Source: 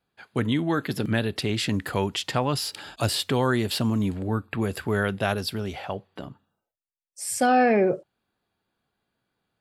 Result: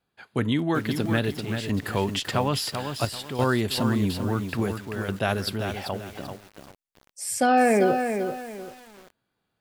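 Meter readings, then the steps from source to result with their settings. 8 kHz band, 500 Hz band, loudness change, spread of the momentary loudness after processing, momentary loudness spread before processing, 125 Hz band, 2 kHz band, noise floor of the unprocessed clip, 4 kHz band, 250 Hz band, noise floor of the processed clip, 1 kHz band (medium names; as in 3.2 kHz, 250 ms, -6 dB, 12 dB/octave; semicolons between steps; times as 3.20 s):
-0.5 dB, +0.5 dB, 0.0 dB, 13 LU, 12 LU, 0.0 dB, 0.0 dB, under -85 dBFS, -1.5 dB, +0.5 dB, -79 dBFS, +1.0 dB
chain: square tremolo 0.59 Hz, depth 65%, duty 80%; bit-crushed delay 389 ms, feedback 35%, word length 7-bit, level -6.5 dB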